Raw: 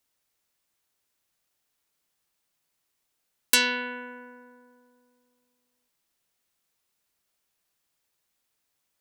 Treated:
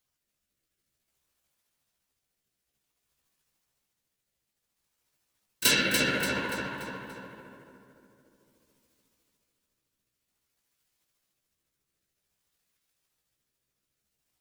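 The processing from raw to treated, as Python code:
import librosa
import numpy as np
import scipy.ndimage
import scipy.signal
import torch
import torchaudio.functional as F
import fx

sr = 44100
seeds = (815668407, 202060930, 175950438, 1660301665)

p1 = fx.law_mismatch(x, sr, coded='A')
p2 = fx.low_shelf(p1, sr, hz=120.0, db=10.0)
p3 = fx.over_compress(p2, sr, threshold_db=-34.0, ratio=-1.0)
p4 = p2 + (p3 * librosa.db_to_amplitude(2.5))
p5 = fx.rotary(p4, sr, hz=0.85)
p6 = fx.stretch_grains(p5, sr, factor=1.6, grain_ms=145.0)
p7 = fx.whisperise(p6, sr, seeds[0])
p8 = fx.doubler(p7, sr, ms=15.0, db=-4.5)
y = p8 + fx.echo_feedback(p8, sr, ms=289, feedback_pct=44, wet_db=-6.0, dry=0)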